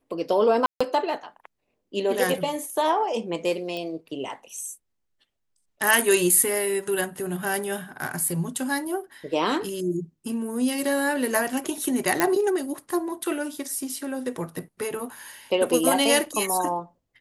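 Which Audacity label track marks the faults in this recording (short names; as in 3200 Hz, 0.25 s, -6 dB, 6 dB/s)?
0.660000	0.810000	gap 0.145 s
3.770000	3.770000	pop -20 dBFS
12.200000	12.200000	pop -5 dBFS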